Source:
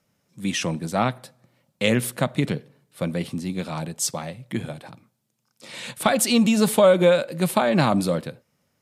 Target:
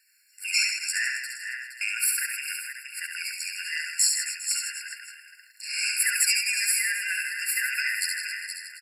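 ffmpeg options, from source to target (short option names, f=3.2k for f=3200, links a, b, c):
-filter_complex "[0:a]afftfilt=real='real(if(between(b,1,1008),(2*floor((b-1)/48)+1)*48-b,b),0)':imag='imag(if(between(b,1,1008),(2*floor((b-1)/48)+1)*48-b,b),0)*if(between(b,1,1008),-1,1)':win_size=2048:overlap=0.75,highshelf=f=2.6k:g=8.5,bandreject=f=1.9k:w=21,asplit=2[a][b];[b]aecho=0:1:468:0.2[c];[a][c]amix=inputs=2:normalize=0,alimiter=limit=-15dB:level=0:latency=1:release=431,acontrast=63,asplit=2[d][e];[e]aecho=0:1:70|157.5|266.9|403.6|574.5:0.631|0.398|0.251|0.158|0.1[f];[d][f]amix=inputs=2:normalize=0,afftfilt=real='re*eq(mod(floor(b*sr/1024/1400),2),1)':imag='im*eq(mod(floor(b*sr/1024/1400),2),1)':win_size=1024:overlap=0.75"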